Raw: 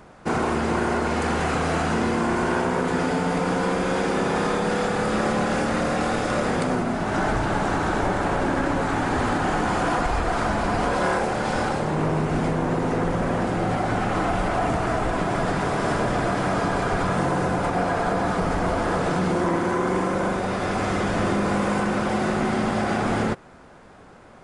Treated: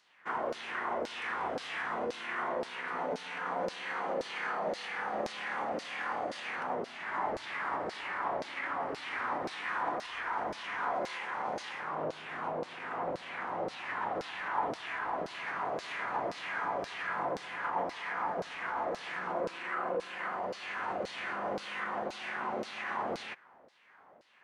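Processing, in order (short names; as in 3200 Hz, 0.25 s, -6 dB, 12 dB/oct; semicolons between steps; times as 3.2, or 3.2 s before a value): LFO band-pass saw down 1.9 Hz 370–4000 Hz; formant shift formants +4 st; gain -4.5 dB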